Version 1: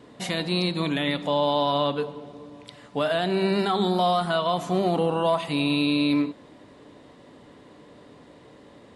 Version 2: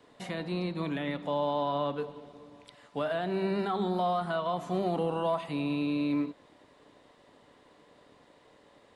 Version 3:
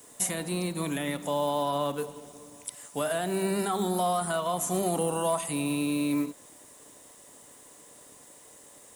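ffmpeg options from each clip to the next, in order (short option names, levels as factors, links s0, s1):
-filter_complex "[0:a]acrossover=split=460|2300[s0][s1][s2];[s0]aeval=exprs='sgn(val(0))*max(abs(val(0))-0.002,0)':c=same[s3];[s2]acompressor=threshold=0.00562:ratio=4[s4];[s3][s1][s4]amix=inputs=3:normalize=0,volume=0.473"
-filter_complex "[0:a]highshelf=f=5100:g=10,acrossover=split=3600[s0][s1];[s1]aexciter=amount=8.2:drive=6.5:freq=6000[s2];[s0][s2]amix=inputs=2:normalize=0,volume=1.19"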